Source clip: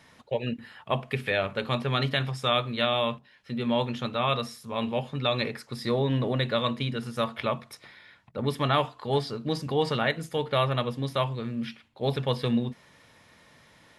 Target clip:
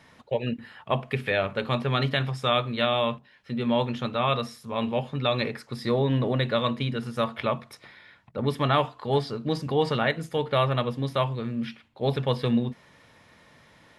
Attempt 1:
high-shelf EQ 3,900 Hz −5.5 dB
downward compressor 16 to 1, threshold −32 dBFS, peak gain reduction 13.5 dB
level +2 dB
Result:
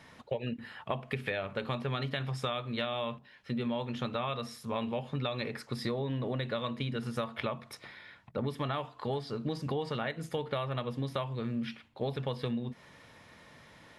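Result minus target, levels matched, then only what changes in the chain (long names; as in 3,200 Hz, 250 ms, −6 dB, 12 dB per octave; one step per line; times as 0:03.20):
downward compressor: peak gain reduction +13.5 dB
remove: downward compressor 16 to 1, threshold −32 dBFS, peak gain reduction 13.5 dB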